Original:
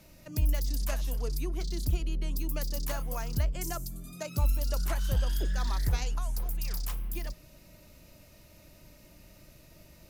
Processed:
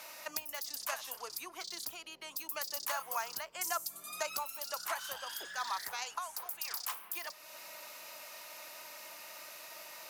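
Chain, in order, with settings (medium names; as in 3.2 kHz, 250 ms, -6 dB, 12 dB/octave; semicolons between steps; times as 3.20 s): compression 2:1, threshold -47 dBFS, peak gain reduction 14 dB; resonant high-pass 970 Hz, resonance Q 1.7; trim +11 dB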